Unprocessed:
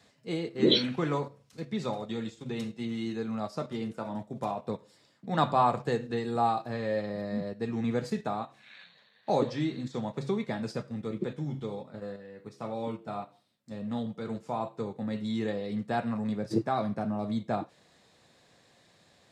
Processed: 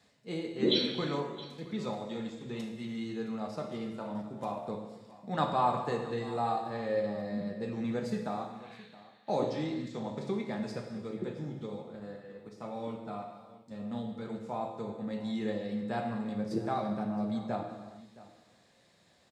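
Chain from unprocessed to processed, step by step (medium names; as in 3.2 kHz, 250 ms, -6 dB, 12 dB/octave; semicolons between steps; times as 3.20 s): delay 668 ms -19 dB; gated-style reverb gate 460 ms falling, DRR 3.5 dB; trim -5 dB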